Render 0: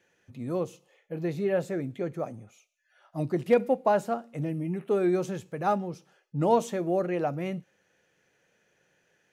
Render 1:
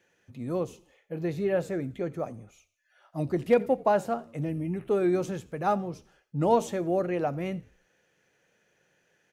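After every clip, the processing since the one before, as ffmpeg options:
-filter_complex "[0:a]asplit=4[a][b][c][d];[b]adelay=86,afreqshift=-67,volume=-23dB[e];[c]adelay=172,afreqshift=-134,volume=-31.2dB[f];[d]adelay=258,afreqshift=-201,volume=-39.4dB[g];[a][e][f][g]amix=inputs=4:normalize=0"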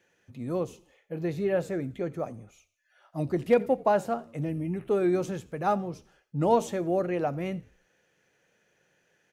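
-af anull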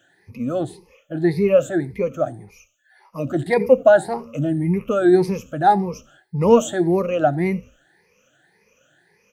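-af "afftfilt=real='re*pow(10,21/40*sin(2*PI*(0.85*log(max(b,1)*sr/1024/100)/log(2)-(1.8)*(pts-256)/sr)))':imag='im*pow(10,21/40*sin(2*PI*(0.85*log(max(b,1)*sr/1024/100)/log(2)-(1.8)*(pts-256)/sr)))':win_size=1024:overlap=0.75,volume=4.5dB"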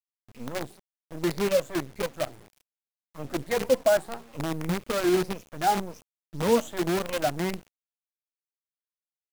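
-af "acrusher=bits=4:dc=4:mix=0:aa=0.000001,volume=-9dB"

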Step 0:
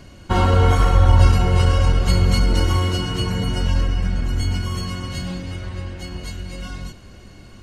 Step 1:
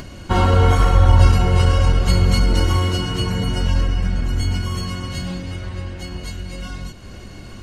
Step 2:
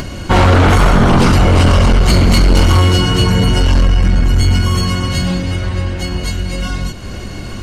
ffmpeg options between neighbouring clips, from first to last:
-af "acompressor=mode=upward:threshold=-29dB:ratio=2.5,volume=1dB"
-af "aeval=exprs='0.891*sin(PI/2*3.55*val(0)/0.891)':c=same,volume=-4dB"

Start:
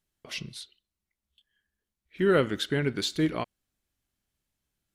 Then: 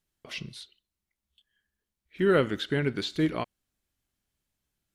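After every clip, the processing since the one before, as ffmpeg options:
-filter_complex "[0:a]acrossover=split=4300[a][b];[b]acompressor=threshold=-47dB:ratio=4:attack=1:release=60[c];[a][c]amix=inputs=2:normalize=0"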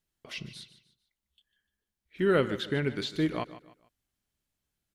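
-af "aecho=1:1:149|298|447:0.178|0.0622|0.0218,volume=-2dB"

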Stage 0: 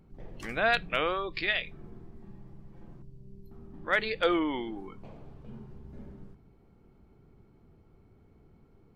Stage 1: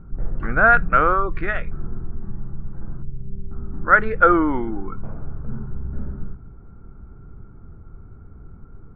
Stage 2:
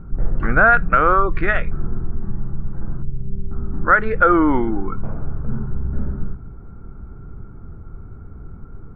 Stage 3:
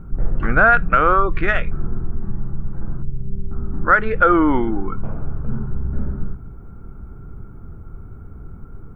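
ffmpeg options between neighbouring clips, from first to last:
-af "lowpass=f=1.4k:t=q:w=7.3,aemphasis=mode=reproduction:type=riaa,volume=4dB"
-af "alimiter=limit=-8.5dB:level=0:latency=1:release=283,volume=5.5dB"
-af "aexciter=amount=1.1:drive=8:freq=2.6k"

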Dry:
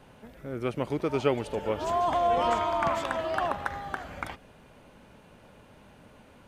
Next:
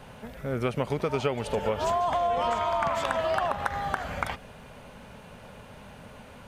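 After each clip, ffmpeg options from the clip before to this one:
-af "equalizer=f=320:w=4:g=-11.5,acompressor=threshold=-31dB:ratio=10,volume=8dB"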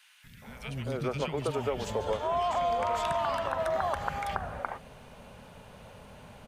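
-filter_complex "[0:a]acrossover=split=260|1700[a][b][c];[a]adelay=240[d];[b]adelay=420[e];[d][e][c]amix=inputs=3:normalize=0,volume=-2dB"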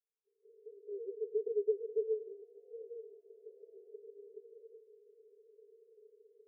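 -af "asuperpass=centerf=430:order=8:qfactor=6.1,volume=1.5dB"

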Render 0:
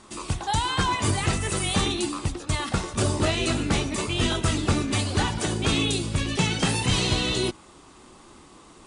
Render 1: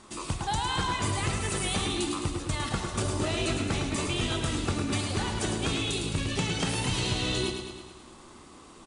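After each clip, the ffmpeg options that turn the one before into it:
-filter_complex "[0:a]acompressor=threshold=-24dB:ratio=6,asplit=2[a][b];[b]aecho=0:1:107|214|321|428|535|642|749|856:0.473|0.279|0.165|0.0972|0.0573|0.0338|0.02|0.0118[c];[a][c]amix=inputs=2:normalize=0,volume=-2dB"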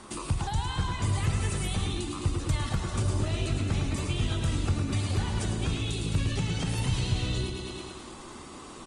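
-filter_complex "[0:a]acrossover=split=150[a][b];[b]acompressor=threshold=-39dB:ratio=10[c];[a][c]amix=inputs=2:normalize=0,volume=6dB" -ar 48000 -c:a libopus -b:a 32k

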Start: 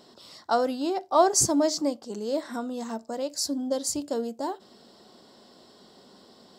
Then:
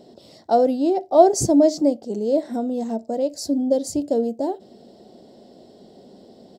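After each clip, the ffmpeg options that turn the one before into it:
-af "firequalizer=gain_entry='entry(680,0);entry(1100,-20);entry(2000,-12)':delay=0.05:min_phase=1,volume=8.5dB"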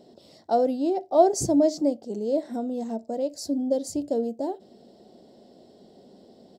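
-af "bandreject=f=60:t=h:w=6,bandreject=f=120:t=h:w=6,volume=-5dB"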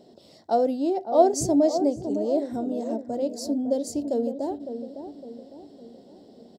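-filter_complex "[0:a]asplit=2[a][b];[b]adelay=557,lowpass=f=880:p=1,volume=-8dB,asplit=2[c][d];[d]adelay=557,lowpass=f=880:p=1,volume=0.5,asplit=2[e][f];[f]adelay=557,lowpass=f=880:p=1,volume=0.5,asplit=2[g][h];[h]adelay=557,lowpass=f=880:p=1,volume=0.5,asplit=2[i][j];[j]adelay=557,lowpass=f=880:p=1,volume=0.5,asplit=2[k][l];[l]adelay=557,lowpass=f=880:p=1,volume=0.5[m];[a][c][e][g][i][k][m]amix=inputs=7:normalize=0"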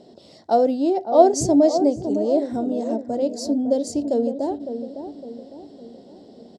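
-af "lowpass=8.5k,volume=4.5dB"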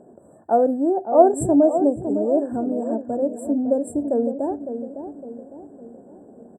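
-af "afftfilt=real='re*(1-between(b*sr/4096,1800,7400))':imag='im*(1-between(b*sr/4096,1800,7400))':win_size=4096:overlap=0.75"

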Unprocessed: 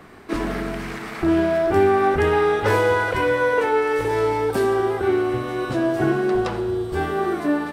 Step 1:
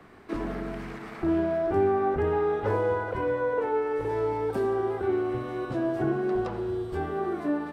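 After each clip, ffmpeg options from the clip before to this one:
-filter_complex "[0:a]highshelf=f=4.4k:g=-6.5,acrossover=split=140|1200[a][b][c];[c]acompressor=threshold=-39dB:ratio=6[d];[a][b][d]amix=inputs=3:normalize=0,volume=-6.5dB"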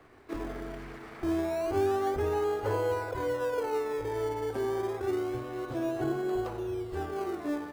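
-filter_complex "[0:a]equalizer=f=190:t=o:w=0.41:g=-14.5,asplit=2[a][b];[b]acrusher=samples=23:mix=1:aa=0.000001:lfo=1:lforange=23:lforate=0.28,volume=-11dB[c];[a][c]amix=inputs=2:normalize=0,volume=-5dB"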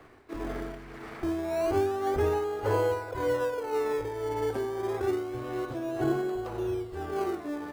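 -af "tremolo=f=1.8:d=0.55,volume=4dB"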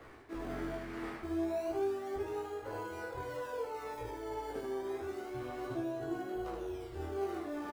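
-af "areverse,acompressor=threshold=-37dB:ratio=6,areverse,flanger=delay=17:depth=6.8:speed=0.5,aecho=1:1:15|76:0.562|0.562,volume=2dB"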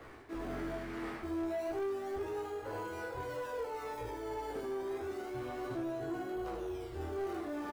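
-af "asoftclip=type=tanh:threshold=-34dB,volume=2dB"

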